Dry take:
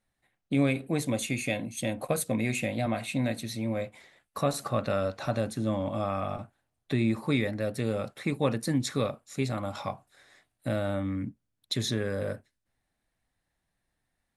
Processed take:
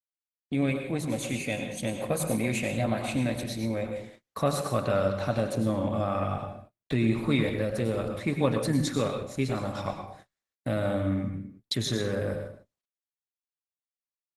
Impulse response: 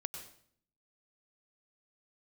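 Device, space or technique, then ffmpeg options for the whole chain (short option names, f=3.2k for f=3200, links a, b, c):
speakerphone in a meeting room: -filter_complex "[1:a]atrim=start_sample=2205[a];[0:a][a]afir=irnorm=-1:irlink=0,asplit=2[b][c];[c]adelay=120,highpass=300,lowpass=3.4k,asoftclip=type=hard:threshold=-23.5dB,volume=-22dB[d];[b][d]amix=inputs=2:normalize=0,dynaudnorm=f=170:g=21:m=3.5dB,agate=range=-36dB:threshold=-48dB:ratio=16:detection=peak" -ar 48000 -c:a libopus -b:a 16k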